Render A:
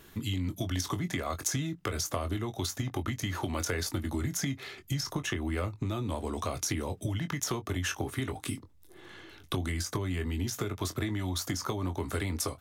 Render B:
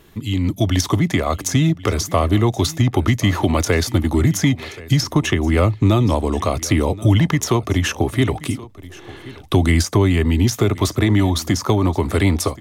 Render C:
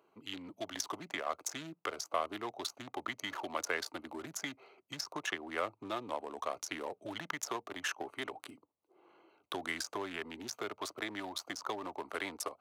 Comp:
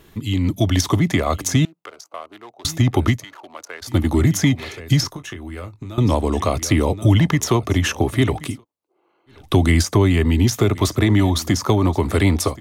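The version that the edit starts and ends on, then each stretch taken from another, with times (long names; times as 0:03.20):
B
0:01.65–0:02.65: punch in from C
0:03.17–0:03.89: punch in from C, crossfade 0.16 s
0:05.08–0:05.98: punch in from A
0:08.53–0:09.38: punch in from C, crossfade 0.24 s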